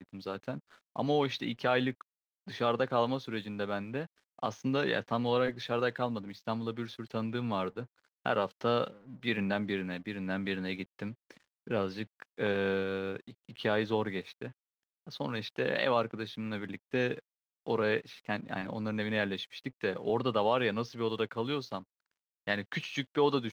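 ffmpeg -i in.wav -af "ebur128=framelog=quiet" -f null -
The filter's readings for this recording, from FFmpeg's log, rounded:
Integrated loudness:
  I:         -33.5 LUFS
  Threshold: -44.0 LUFS
Loudness range:
  LRA:         2.6 LU
  Threshold: -54.0 LUFS
  LRA low:   -35.4 LUFS
  LRA high:  -32.8 LUFS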